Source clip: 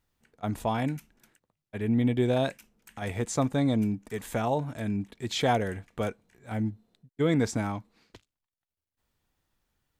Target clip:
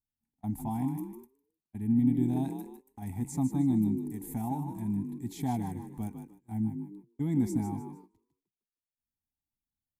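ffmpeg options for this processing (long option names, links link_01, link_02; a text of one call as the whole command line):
ffmpeg -i in.wav -filter_complex "[0:a]firequalizer=gain_entry='entry(150,0);entry(260,4);entry(520,-29);entry(810,0);entry(1300,-25);entry(2000,-14);entry(2900,-20);entry(11000,6)':delay=0.05:min_phase=1,asplit=5[link_01][link_02][link_03][link_04][link_05];[link_02]adelay=153,afreqshift=43,volume=-8dB[link_06];[link_03]adelay=306,afreqshift=86,volume=-17.4dB[link_07];[link_04]adelay=459,afreqshift=129,volume=-26.7dB[link_08];[link_05]adelay=612,afreqshift=172,volume=-36.1dB[link_09];[link_01][link_06][link_07][link_08][link_09]amix=inputs=5:normalize=0,agate=range=-16dB:threshold=-46dB:ratio=16:detection=peak,volume=-3dB" out.wav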